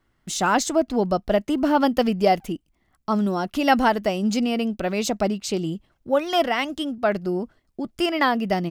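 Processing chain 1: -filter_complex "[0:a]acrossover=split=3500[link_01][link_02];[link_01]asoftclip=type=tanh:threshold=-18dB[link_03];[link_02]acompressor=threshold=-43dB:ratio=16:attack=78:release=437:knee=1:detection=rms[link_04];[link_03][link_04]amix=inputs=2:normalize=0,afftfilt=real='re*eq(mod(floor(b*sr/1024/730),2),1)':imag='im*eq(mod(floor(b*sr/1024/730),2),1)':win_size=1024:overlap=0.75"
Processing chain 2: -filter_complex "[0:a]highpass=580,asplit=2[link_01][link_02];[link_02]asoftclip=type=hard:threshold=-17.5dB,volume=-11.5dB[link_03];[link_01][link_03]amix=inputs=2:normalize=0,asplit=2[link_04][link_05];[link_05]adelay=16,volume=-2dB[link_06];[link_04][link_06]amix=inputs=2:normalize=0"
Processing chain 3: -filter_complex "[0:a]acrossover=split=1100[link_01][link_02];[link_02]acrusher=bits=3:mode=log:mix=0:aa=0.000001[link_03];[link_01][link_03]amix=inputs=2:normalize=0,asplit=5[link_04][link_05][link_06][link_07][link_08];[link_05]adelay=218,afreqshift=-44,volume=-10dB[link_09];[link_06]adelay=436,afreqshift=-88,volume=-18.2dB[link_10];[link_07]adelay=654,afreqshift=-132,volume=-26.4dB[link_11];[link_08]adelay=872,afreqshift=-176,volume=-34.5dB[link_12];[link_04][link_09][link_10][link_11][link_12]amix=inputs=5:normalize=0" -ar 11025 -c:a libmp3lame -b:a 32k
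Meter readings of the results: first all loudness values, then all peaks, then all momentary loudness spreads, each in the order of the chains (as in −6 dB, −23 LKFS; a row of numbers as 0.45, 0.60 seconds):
−33.0, −22.0, −23.0 LKFS; −16.5, −2.5, −4.5 dBFS; 14, 14, 10 LU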